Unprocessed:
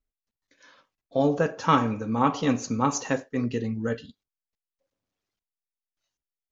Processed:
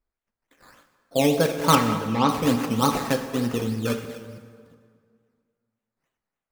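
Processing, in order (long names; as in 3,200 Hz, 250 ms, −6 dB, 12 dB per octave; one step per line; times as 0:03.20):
delay that plays each chunk backwards 365 ms, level −13.5 dB
sample-and-hold swept by an LFO 12×, swing 60% 3.4 Hz
0:01.75–0:02.29: high-frequency loss of the air 180 metres
dense smooth reverb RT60 2 s, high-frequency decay 0.7×, DRR 7.5 dB
level +2 dB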